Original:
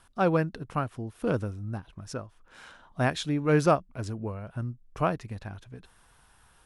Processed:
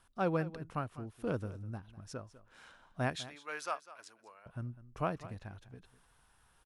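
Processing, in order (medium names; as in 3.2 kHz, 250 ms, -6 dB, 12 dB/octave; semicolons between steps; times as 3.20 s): 3.16–4.46 s: high-pass 1.1 kHz 12 dB/octave; delay 200 ms -16.5 dB; trim -8 dB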